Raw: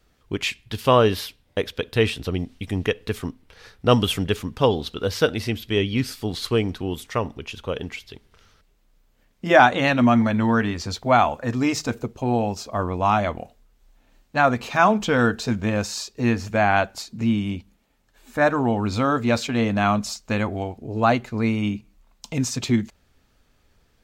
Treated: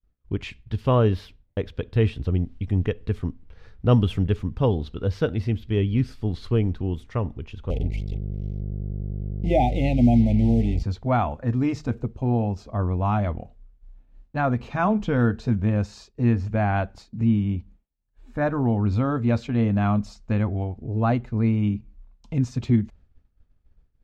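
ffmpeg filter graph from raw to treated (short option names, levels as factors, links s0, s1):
-filter_complex "[0:a]asettb=1/sr,asplit=3[s0][s1][s2];[s0]atrim=end=7.704[s3];[s1]atrim=start=7.7:end=10.83,asetpts=PTS-STARTPTS,afade=t=in:d=0.004:c=qsin,afade=t=out:st=3.126:d=0.004:c=qsin,aeval=exprs='val(0)+0.0251*(sin(2*PI*50*n/s)+sin(2*PI*2*50*n/s)/2+sin(2*PI*3*50*n/s)/3+sin(2*PI*4*50*n/s)/4+sin(2*PI*5*50*n/s)/5)':c=same,acrusher=bits=4:mix=0:aa=0.5,asuperstop=centerf=1300:order=20:qfactor=1.1[s4];[s2]atrim=start=10.826[s5];[s3][s4]acrossfade=d=0.004:c1=hsin:c2=qsin[s6];[s6][s5]acrossfade=d=0.004:c1=qsin:c2=hsin,aemphasis=mode=reproduction:type=riaa,agate=range=0.0224:threshold=0.0158:ratio=3:detection=peak,volume=0.422"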